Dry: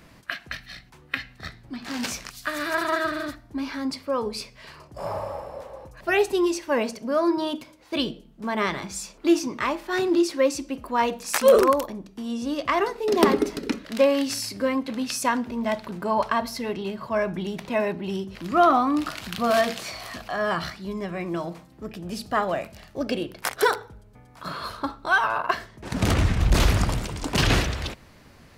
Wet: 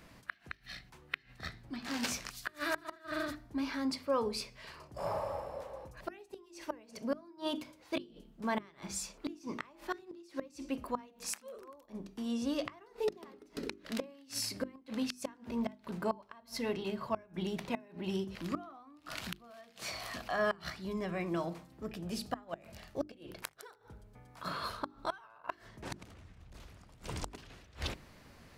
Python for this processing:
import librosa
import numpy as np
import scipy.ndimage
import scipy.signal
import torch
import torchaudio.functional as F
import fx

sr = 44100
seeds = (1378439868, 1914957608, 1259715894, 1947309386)

y = fx.gate_flip(x, sr, shuts_db=-16.0, range_db=-28)
y = fx.hum_notches(y, sr, base_hz=50, count=8)
y = y * librosa.db_to_amplitude(-5.5)